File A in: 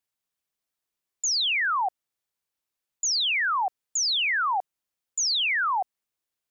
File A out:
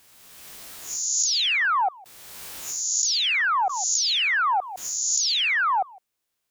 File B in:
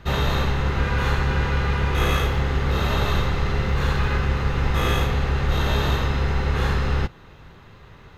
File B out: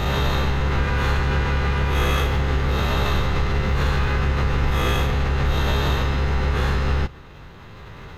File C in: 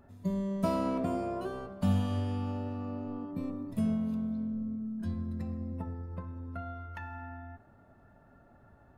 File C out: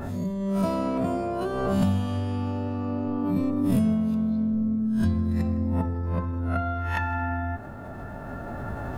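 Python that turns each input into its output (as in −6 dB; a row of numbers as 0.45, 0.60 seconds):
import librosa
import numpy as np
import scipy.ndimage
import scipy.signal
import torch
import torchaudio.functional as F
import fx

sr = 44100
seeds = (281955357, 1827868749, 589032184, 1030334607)

p1 = fx.spec_swells(x, sr, rise_s=0.35)
p2 = fx.recorder_agc(p1, sr, target_db=-14.0, rise_db_per_s=5.7, max_gain_db=30)
p3 = 10.0 ** (-17.5 / 20.0) * np.tanh(p2 / 10.0 ** (-17.5 / 20.0))
p4 = p2 + F.gain(torch.from_numpy(p3), -11.5).numpy()
p5 = p4 + 10.0 ** (-24.0 / 20.0) * np.pad(p4, (int(157 * sr / 1000.0), 0))[:len(p4)]
p6 = fx.pre_swell(p5, sr, db_per_s=29.0)
y = F.gain(torch.from_numpy(p6), -2.5).numpy()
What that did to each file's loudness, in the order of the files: +2.5, +1.0, +8.0 LU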